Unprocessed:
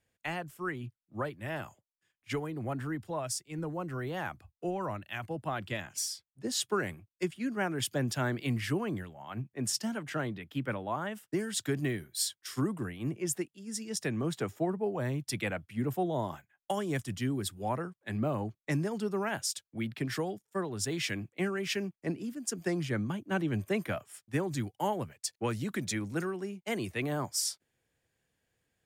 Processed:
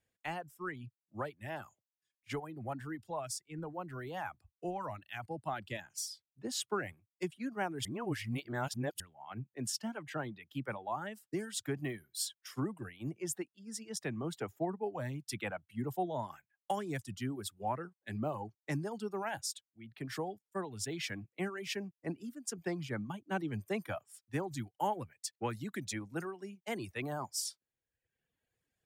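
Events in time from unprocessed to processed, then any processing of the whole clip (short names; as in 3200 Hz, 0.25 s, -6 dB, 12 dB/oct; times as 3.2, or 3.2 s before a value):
7.85–9 reverse
19.71–20.17 fade in
whole clip: reverb removal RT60 0.98 s; dynamic EQ 820 Hz, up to +6 dB, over -52 dBFS, Q 3.1; gain -5 dB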